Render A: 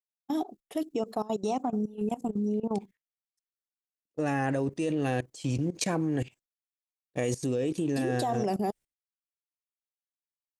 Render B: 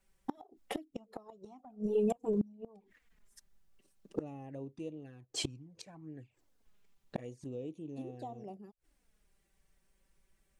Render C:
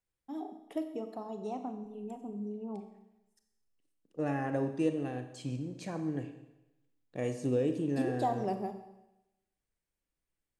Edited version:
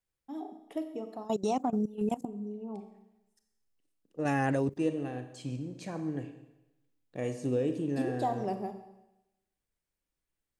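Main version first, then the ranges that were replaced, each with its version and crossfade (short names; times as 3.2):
C
1.25–2.25 from A
4.25–4.77 from A
not used: B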